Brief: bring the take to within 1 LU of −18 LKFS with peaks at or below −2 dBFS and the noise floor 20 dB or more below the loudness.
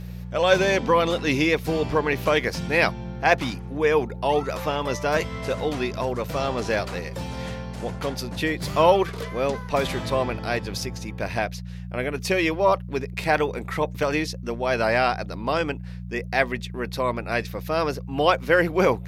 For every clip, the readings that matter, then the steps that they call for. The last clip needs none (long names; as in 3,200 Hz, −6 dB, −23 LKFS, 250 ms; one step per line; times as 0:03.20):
mains hum 60 Hz; hum harmonics up to 180 Hz; level of the hum −32 dBFS; integrated loudness −24.0 LKFS; sample peak −4.0 dBFS; target loudness −18.0 LKFS
→ hum removal 60 Hz, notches 3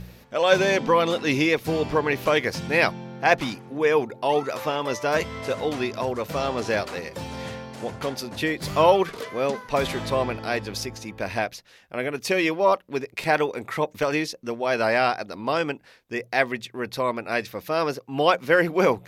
mains hum none found; integrated loudness −24.5 LKFS; sample peak −4.0 dBFS; target loudness −18.0 LKFS
→ level +6.5 dB
brickwall limiter −2 dBFS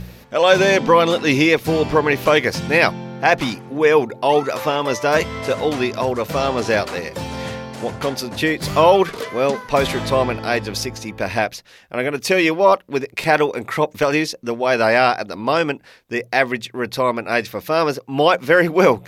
integrated loudness −18.5 LKFS; sample peak −2.0 dBFS; background noise floor −46 dBFS